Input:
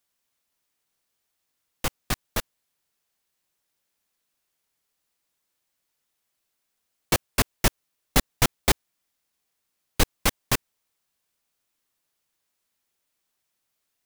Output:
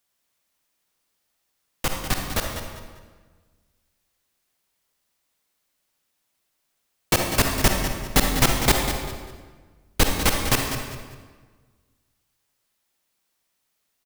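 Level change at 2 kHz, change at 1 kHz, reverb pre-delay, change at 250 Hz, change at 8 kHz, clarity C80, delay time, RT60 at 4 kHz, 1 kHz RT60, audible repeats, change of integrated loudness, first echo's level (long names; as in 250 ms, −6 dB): +4.0 dB, +4.5 dB, 39 ms, +5.0 dB, +3.5 dB, 4.0 dB, 197 ms, 1.2 s, 1.4 s, 3, +3.5 dB, −10.0 dB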